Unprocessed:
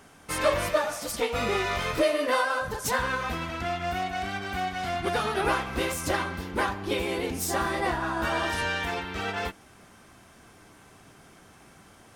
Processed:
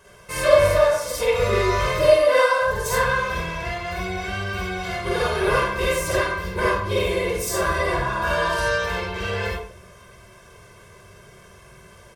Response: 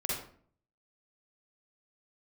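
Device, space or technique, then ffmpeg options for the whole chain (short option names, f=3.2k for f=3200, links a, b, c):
microphone above a desk: -filter_complex "[0:a]aecho=1:1:1.9:0.87[a];[1:a]atrim=start_sample=2205[b];[a][b]afir=irnorm=-1:irlink=0,volume=-2dB"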